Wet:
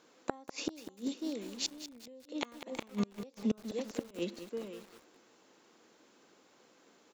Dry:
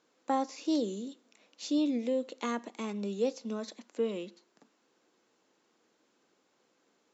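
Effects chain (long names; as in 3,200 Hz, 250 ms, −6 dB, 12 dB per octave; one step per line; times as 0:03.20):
single-tap delay 541 ms −17 dB
gate with flip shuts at −28 dBFS, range −31 dB
feedback echo at a low word length 197 ms, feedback 55%, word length 9 bits, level −10.5 dB
level +8 dB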